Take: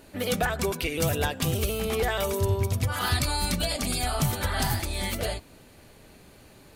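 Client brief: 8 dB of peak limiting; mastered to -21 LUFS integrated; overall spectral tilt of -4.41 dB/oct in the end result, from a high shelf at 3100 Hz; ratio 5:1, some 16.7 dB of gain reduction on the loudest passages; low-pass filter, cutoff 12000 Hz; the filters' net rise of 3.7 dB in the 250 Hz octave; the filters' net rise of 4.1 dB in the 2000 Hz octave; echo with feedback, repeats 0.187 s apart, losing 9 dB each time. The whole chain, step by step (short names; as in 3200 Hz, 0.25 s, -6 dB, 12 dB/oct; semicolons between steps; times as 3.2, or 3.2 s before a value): LPF 12000 Hz; bell 250 Hz +5 dB; bell 2000 Hz +8 dB; high shelf 3100 Hz -8 dB; compressor 5:1, threshold -40 dBFS; limiter -34.5 dBFS; feedback echo 0.187 s, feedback 35%, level -9 dB; gain +23 dB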